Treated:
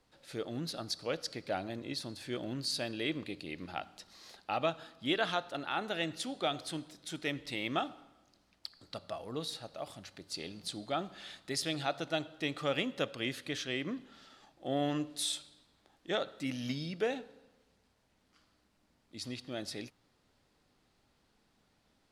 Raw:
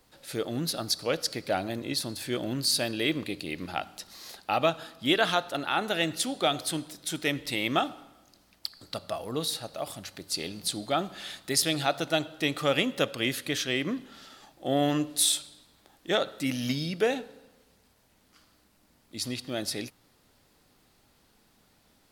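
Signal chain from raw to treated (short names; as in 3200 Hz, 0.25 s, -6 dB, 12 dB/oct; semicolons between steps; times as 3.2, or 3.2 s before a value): air absorption 51 m; gain -7 dB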